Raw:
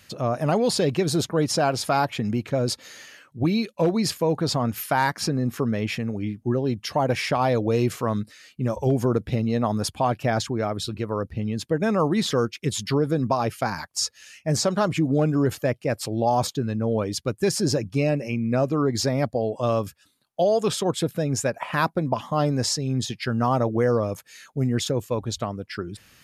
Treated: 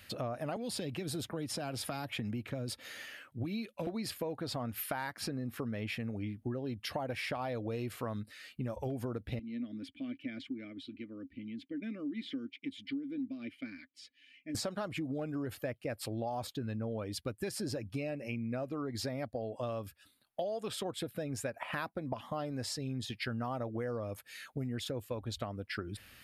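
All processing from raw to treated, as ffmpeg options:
-filter_complex "[0:a]asettb=1/sr,asplit=3[a][b][c];[a]atrim=end=0.564[d];[b]atrim=start=0.56:end=3.87,asetpts=PTS-STARTPTS,afade=t=in:d=0.004:c=qsin,afade=t=out:st=3.306:d=0.004:c=qsin,equalizer=f=4.3k:t=o:w=0.2:g=-4.5,acrossover=split=290|3000[e][f][g];[f]acompressor=threshold=-32dB:ratio=3:attack=3.2:release=140:knee=2.83:detection=peak[h];[e][h][g]amix=inputs=3:normalize=0[i];[c]atrim=start=3.866[j];[d][i]acrossfade=d=0.004:c1=hsin:c2=qsin[k];[k][j]acrossfade=d=0.004:c1=qsin:c2=hsin,asettb=1/sr,asplit=3[l][m][n];[l]atrim=end=9.394[o];[m]atrim=start=9.39:end=14.55,asetpts=PTS-STARTPTS,afade=t=in:d=0.004:c=qsin,afade=t=out:st=5.156:d=0.004:c=qsin,asplit=3[p][q][r];[p]bandpass=f=270:t=q:w=8,volume=0dB[s];[q]bandpass=f=2.29k:t=q:w=8,volume=-6dB[t];[r]bandpass=f=3.01k:t=q:w=8,volume=-9dB[u];[s][t][u]amix=inputs=3:normalize=0,aecho=1:1:3.4:0.36,atrim=end_sample=227556[v];[n]atrim=start=14.546[w];[o][v]acrossfade=d=0.004:c1=hsin:c2=qsin[x];[x][w]acrossfade=d=0.004:c1=qsin:c2=hsin,equalizer=f=160:t=o:w=0.67:g=-9,equalizer=f=400:t=o:w=0.67:g=-5,equalizer=f=1k:t=o:w=0.67:g=-5,equalizer=f=6.3k:t=o:w=0.67:g=-11,acompressor=threshold=-35dB:ratio=6"

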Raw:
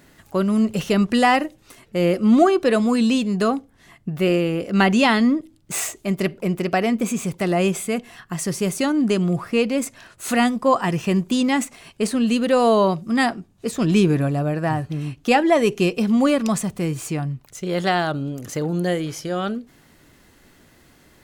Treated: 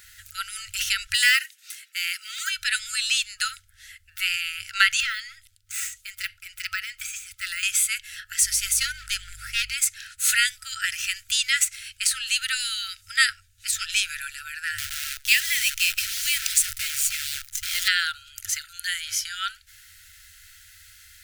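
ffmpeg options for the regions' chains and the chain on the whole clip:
-filter_complex "[0:a]asettb=1/sr,asplit=3[a][b][c];[a]atrim=end=1.144[d];[b]atrim=start=1.14:end=2.5,asetpts=PTS-STARTPTS,afade=t=in:d=0.004:c=qsin,afade=t=out:st=1.356:d=0.004:c=qsin,highpass=f=1.3k:w=0.5412,highpass=f=1.3k:w=1.3066,acrusher=bits=5:mode=log:mix=0:aa=0.000001[e];[c]atrim=start=2.496[f];[d][e]acrossfade=d=0.004:c1=hsin:c2=qsin[g];[g][f]acrossfade=d=0.004:c1=qsin:c2=hsin,asettb=1/sr,asplit=3[h][i][j];[h]atrim=end=5.004[k];[i]atrim=start=5:end=7.63,asetpts=PTS-STARTPTS,afade=t=in:d=0.004:c=qsin,afade=t=out:st=2.626:d=0.004:c=qsin,deesser=0.8,tremolo=f=2.4:d=0.53[l];[j]atrim=start=7.626[m];[k][l]acrossfade=d=0.004:c1=hsin:c2=qsin[n];[n][m]acrossfade=d=0.004:c1=qsin:c2=hsin,asettb=1/sr,asplit=3[o][p][q];[o]atrim=end=8.424[r];[p]atrim=start=8.42:end=9.74,asetpts=PTS-STARTPTS,afade=t=in:d=0.004:c=qsin,afade=t=out:st=1.316:d=0.004:c=qsin,aeval=exprs='val(0)+0.00708*(sin(2*PI*50*n/s)+sin(2*PI*2*50*n/s)/2+sin(2*PI*3*50*n/s)/3+sin(2*PI*4*50*n/s)/4+sin(2*PI*5*50*n/s)/5)':c=same,asoftclip=type=hard:threshold=-16dB[s];[q]atrim=start=9.736[t];[r][s]acrossfade=d=0.004:c1=hsin:c2=qsin[u];[u][t]acrossfade=d=0.004:c1=qsin:c2=hsin,asettb=1/sr,asplit=3[v][w][x];[v]atrim=end=14.784[y];[w]atrim=start=14.78:end=17.88,asetpts=PTS-STARTPTS,afade=t=in:d=0.004:c=qsin,afade=t=out:st=3.096:d=0.004:c=qsin,asuperstop=centerf=1100:order=8:qfactor=0.99,equalizer=f=140:w=6.2:g=13.5,acrusher=bits=6:dc=4:mix=0:aa=0.000001[z];[x]atrim=start=17.876[aa];[y][z]acrossfade=d=0.004:c1=hsin:c2=qsin[ab];[ab][aa]acrossfade=d=0.004:c1=qsin:c2=hsin,afftfilt=real='re*(1-between(b*sr/4096,100,1300))':imag='im*(1-between(b*sr/4096,100,1300))':win_size=4096:overlap=0.75,highshelf=f=2.4k:g=10.5"

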